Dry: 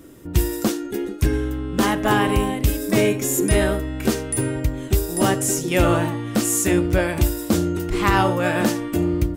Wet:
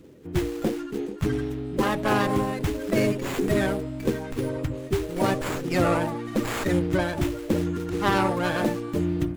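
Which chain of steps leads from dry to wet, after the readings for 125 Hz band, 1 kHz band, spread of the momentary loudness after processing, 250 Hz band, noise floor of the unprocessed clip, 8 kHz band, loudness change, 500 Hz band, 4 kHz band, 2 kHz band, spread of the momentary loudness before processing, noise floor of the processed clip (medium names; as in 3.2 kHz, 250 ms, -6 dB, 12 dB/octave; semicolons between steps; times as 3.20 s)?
-5.5 dB, -4.0 dB, 6 LU, -4.5 dB, -32 dBFS, -16.0 dB, -5.0 dB, -3.5 dB, -6.0 dB, -5.0 dB, 5 LU, -36 dBFS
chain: coarse spectral quantiser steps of 30 dB; high-pass 80 Hz; hum notches 60/120 Hz; sliding maximum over 9 samples; trim -3.5 dB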